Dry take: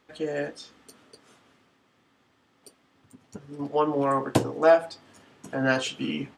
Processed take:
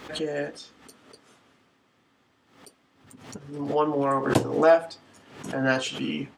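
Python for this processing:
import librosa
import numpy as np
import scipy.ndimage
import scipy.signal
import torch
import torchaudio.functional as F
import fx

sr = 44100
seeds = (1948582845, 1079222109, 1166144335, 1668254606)

y = fx.pre_swell(x, sr, db_per_s=89.0)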